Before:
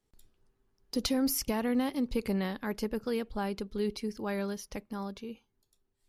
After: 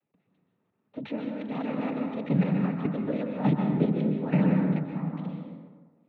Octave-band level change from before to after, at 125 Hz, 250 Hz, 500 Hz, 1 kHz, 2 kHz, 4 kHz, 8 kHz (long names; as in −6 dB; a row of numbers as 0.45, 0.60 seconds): +15.0 dB, +6.0 dB, +1.5 dB, +2.5 dB, 0.0 dB, below −10 dB, below −35 dB